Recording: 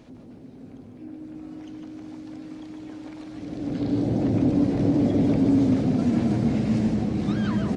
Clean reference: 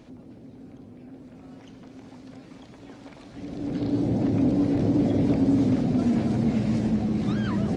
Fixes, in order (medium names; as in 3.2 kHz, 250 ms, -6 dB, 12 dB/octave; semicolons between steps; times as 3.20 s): band-stop 310 Hz, Q 30; inverse comb 149 ms -6 dB